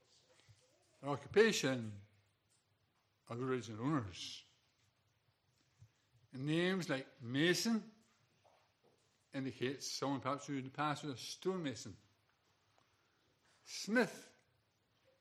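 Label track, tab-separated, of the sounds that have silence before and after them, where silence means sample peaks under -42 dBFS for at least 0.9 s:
1.040000	1.890000	sound
3.310000	4.370000	sound
6.350000	7.790000	sound
9.340000	11.880000	sound
13.710000	14.110000	sound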